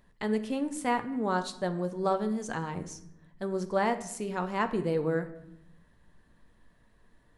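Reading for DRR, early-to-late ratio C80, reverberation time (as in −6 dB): 8.0 dB, 16.0 dB, 0.80 s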